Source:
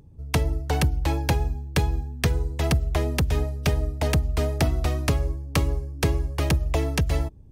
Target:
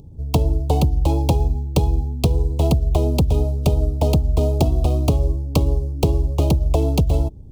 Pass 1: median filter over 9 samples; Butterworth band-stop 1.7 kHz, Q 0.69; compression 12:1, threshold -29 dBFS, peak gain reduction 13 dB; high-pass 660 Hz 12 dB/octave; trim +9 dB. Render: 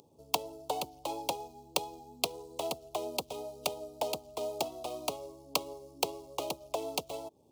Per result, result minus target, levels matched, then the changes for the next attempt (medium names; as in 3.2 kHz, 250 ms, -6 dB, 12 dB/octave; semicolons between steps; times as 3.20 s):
compression: peak gain reduction +7.5 dB; 500 Hz band +5.0 dB
change: compression 12:1, threshold -21 dBFS, peak gain reduction 6 dB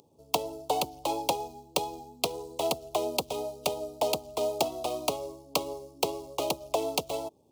500 Hz band +6.5 dB
remove: high-pass 660 Hz 12 dB/octave